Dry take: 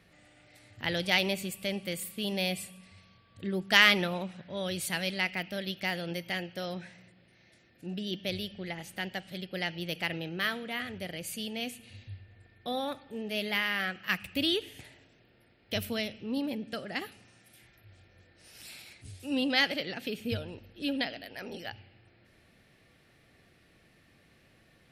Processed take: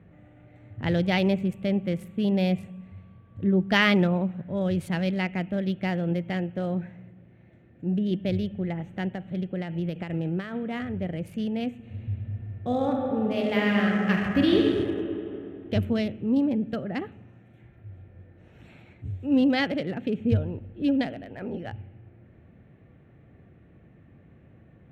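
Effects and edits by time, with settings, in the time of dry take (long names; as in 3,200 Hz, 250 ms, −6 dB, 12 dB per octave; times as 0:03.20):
0:09.08–0:10.55: downward compressor, threshold −33 dBFS
0:11.81–0:14.65: thrown reverb, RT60 3 s, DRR −1.5 dB
0:15.95–0:16.87: high-shelf EQ 5,500 Hz +7.5 dB
whole clip: adaptive Wiener filter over 9 samples; high-pass filter 87 Hz; spectral tilt −4 dB per octave; level +2.5 dB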